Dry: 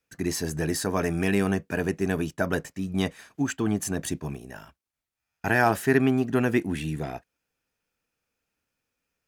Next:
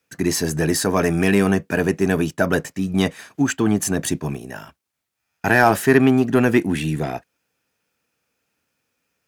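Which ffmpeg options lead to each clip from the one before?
ffmpeg -i in.wav -filter_complex "[0:a]highpass=93,asplit=2[link_01][link_02];[link_02]asoftclip=type=tanh:threshold=-18dB,volume=-4dB[link_03];[link_01][link_03]amix=inputs=2:normalize=0,volume=4dB" out.wav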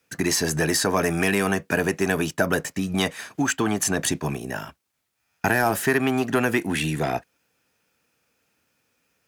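ffmpeg -i in.wav -filter_complex "[0:a]acrossover=split=550|7500[link_01][link_02][link_03];[link_01]acompressor=threshold=-28dB:ratio=4[link_04];[link_02]acompressor=threshold=-25dB:ratio=4[link_05];[link_03]acompressor=threshold=-33dB:ratio=4[link_06];[link_04][link_05][link_06]amix=inputs=3:normalize=0,volume=3.5dB" out.wav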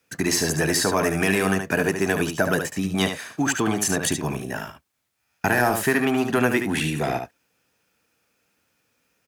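ffmpeg -i in.wav -af "aecho=1:1:73:0.447" out.wav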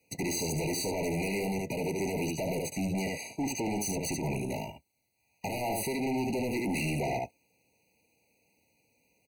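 ffmpeg -i in.wav -af "alimiter=limit=-14dB:level=0:latency=1:release=124,volume=28.5dB,asoftclip=hard,volume=-28.5dB,afftfilt=real='re*eq(mod(floor(b*sr/1024/970),2),0)':imag='im*eq(mod(floor(b*sr/1024/970),2),0)':win_size=1024:overlap=0.75" out.wav

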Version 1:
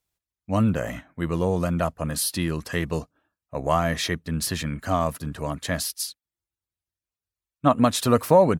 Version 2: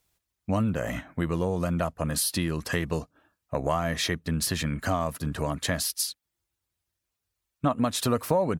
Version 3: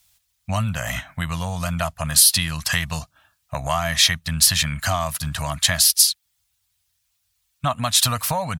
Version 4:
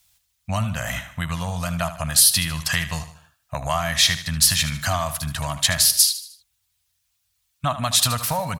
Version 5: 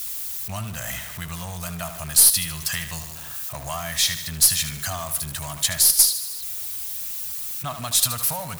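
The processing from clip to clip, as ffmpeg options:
ffmpeg -i in.wav -af "acompressor=threshold=-35dB:ratio=3,volume=8dB" out.wav
ffmpeg -i in.wav -af "firequalizer=gain_entry='entry(120,0);entry(380,-26);entry(660,-2);entry(3300,8)':delay=0.05:min_phase=1,volume=6dB" out.wav
ffmpeg -i in.wav -af "aecho=1:1:76|152|228|304:0.237|0.104|0.0459|0.0202,volume=-1dB" out.wav
ffmpeg -i in.wav -af "aeval=exprs='val(0)+0.5*0.0422*sgn(val(0))':channel_layout=same,aemphasis=mode=production:type=50kf,aeval=exprs='2.66*(cos(1*acos(clip(val(0)/2.66,-1,1)))-cos(1*PI/2))+0.119*(cos(4*acos(clip(val(0)/2.66,-1,1)))-cos(4*PI/2))':channel_layout=same,volume=-9.5dB" out.wav

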